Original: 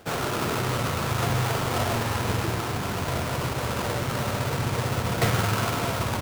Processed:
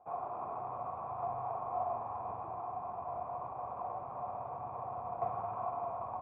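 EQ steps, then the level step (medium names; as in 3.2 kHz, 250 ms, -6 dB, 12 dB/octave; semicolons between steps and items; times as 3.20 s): cascade formant filter a; treble shelf 3.2 kHz -8.5 dB; +1.0 dB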